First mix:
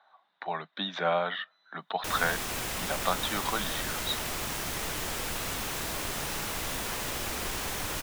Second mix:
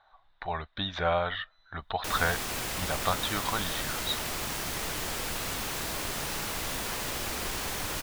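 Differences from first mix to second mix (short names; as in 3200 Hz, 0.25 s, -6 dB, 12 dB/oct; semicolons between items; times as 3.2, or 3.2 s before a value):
speech: remove steep high-pass 160 Hz 72 dB/oct; master: add bell 4500 Hz +2 dB 0.29 oct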